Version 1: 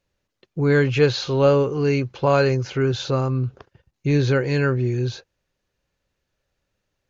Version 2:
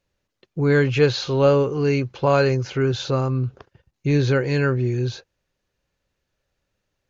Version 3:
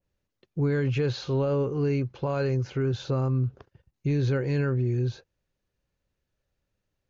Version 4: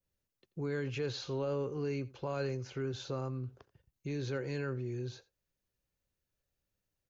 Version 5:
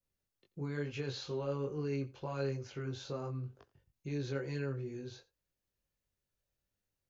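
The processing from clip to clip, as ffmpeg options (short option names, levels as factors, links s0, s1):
-af anull
-af "lowshelf=f=360:g=6.5,alimiter=limit=0.299:level=0:latency=1,adynamicequalizer=threshold=0.01:dfrequency=2200:dqfactor=0.7:tfrequency=2200:tqfactor=0.7:attack=5:release=100:ratio=0.375:range=2:mode=cutabove:tftype=highshelf,volume=0.398"
-filter_complex "[0:a]acrossover=split=270|2200[s0][s1][s2];[s0]alimiter=level_in=1.68:limit=0.0631:level=0:latency=1:release=432,volume=0.596[s3];[s3][s1][s2]amix=inputs=3:normalize=0,crystalizer=i=1.5:c=0,aecho=1:1:86:0.0891,volume=0.398"
-af "flanger=delay=20:depth=2.1:speed=2.2,volume=1.12"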